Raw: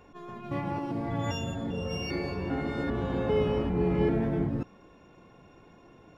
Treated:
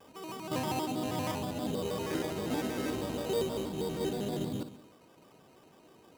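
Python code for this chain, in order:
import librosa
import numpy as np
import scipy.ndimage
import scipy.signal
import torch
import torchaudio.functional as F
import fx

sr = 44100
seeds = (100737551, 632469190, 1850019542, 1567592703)

y = fx.high_shelf(x, sr, hz=2200.0, db=-8.5)
y = fx.rider(y, sr, range_db=10, speed_s=0.5)
y = fx.highpass(y, sr, hz=340.0, slope=6)
y = fx.air_absorb(y, sr, metres=180.0)
y = fx.echo_filtered(y, sr, ms=63, feedback_pct=54, hz=2000.0, wet_db=-11.0)
y = fx.sample_hold(y, sr, seeds[0], rate_hz=3800.0, jitter_pct=0)
y = fx.vibrato_shape(y, sr, shape='square', rate_hz=6.3, depth_cents=160.0)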